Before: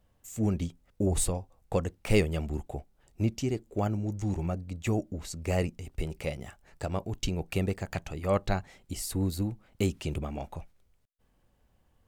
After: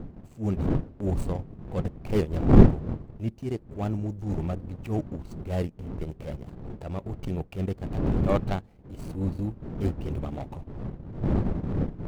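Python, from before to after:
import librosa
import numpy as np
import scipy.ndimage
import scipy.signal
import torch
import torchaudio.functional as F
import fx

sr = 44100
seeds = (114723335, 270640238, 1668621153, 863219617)

y = scipy.ndimage.median_filter(x, 25, mode='constant')
y = fx.dmg_wind(y, sr, seeds[0], corner_hz=190.0, level_db=-27.0)
y = fx.transient(y, sr, attack_db=-12, sustain_db=-8)
y = y * 10.0 ** (3.0 / 20.0)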